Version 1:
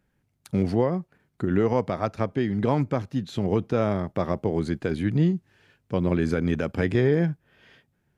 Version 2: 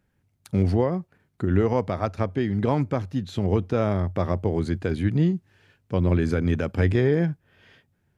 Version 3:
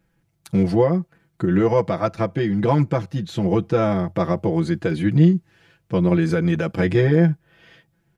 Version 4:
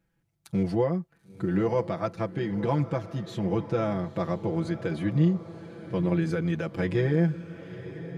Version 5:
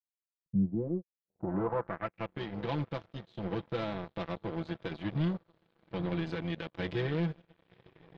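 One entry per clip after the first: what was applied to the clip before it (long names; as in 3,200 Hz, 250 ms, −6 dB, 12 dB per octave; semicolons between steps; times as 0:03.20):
parametric band 91 Hz +11 dB 0.24 octaves
comb filter 6 ms, depth 92%; level +2 dB
feedback delay with all-pass diffusion 955 ms, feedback 42%, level −13.5 dB; level −8 dB
soft clipping −23.5 dBFS, distortion −11 dB; power curve on the samples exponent 3; low-pass filter sweep 130 Hz → 3,700 Hz, 0:00.35–0:02.42; level −1 dB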